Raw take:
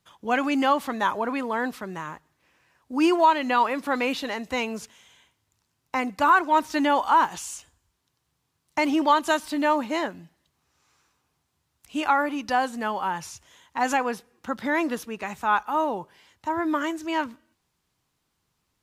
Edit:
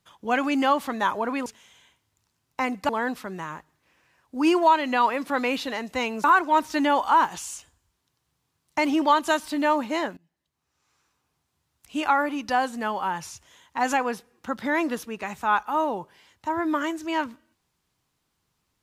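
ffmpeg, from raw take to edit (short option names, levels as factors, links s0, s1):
-filter_complex "[0:a]asplit=5[s0][s1][s2][s3][s4];[s0]atrim=end=1.462[s5];[s1]atrim=start=4.808:end=6.242[s6];[s2]atrim=start=1.458:end=4.812[s7];[s3]atrim=start=6.238:end=10.17,asetpts=PTS-STARTPTS,afade=t=out:st=3.928:d=0.004:c=hsin:silence=0.0668344[s8];[s4]atrim=start=10.17,asetpts=PTS-STARTPTS,afade=t=in:d=1.91:c=qsin:silence=0.0668344[s9];[s5][s6]acrossfade=d=0.004:c1=hsin:c2=hsin[s10];[s10][s7]acrossfade=d=0.004:c1=hsin:c2=hsin[s11];[s8][s9]concat=n=2:v=0:a=1[s12];[s11][s12]acrossfade=d=0.004:c1=hsin:c2=hsin"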